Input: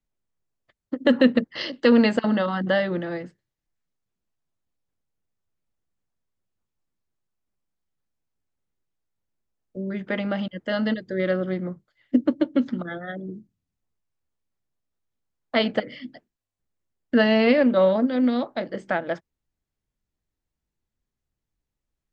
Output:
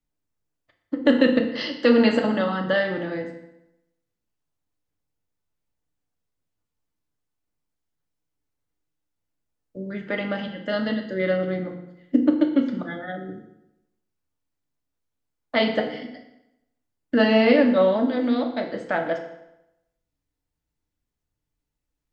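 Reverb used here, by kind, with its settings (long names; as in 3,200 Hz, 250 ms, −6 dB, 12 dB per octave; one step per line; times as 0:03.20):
feedback delay network reverb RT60 0.88 s, low-frequency decay 1×, high-frequency decay 0.85×, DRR 2.5 dB
level −1 dB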